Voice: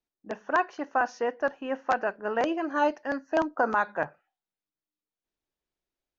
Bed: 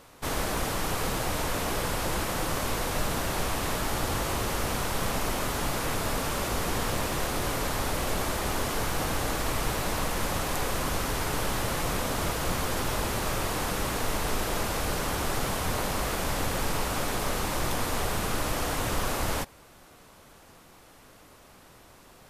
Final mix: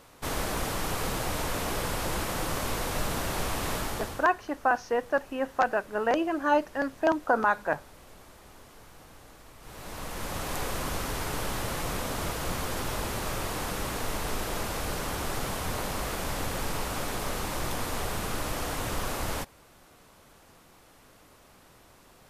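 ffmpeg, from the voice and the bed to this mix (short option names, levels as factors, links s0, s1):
-filter_complex "[0:a]adelay=3700,volume=1.12[s0];[1:a]volume=7.94,afade=t=out:st=3.77:d=0.52:silence=0.0891251,afade=t=in:st=9.6:d=0.96:silence=0.105925[s1];[s0][s1]amix=inputs=2:normalize=0"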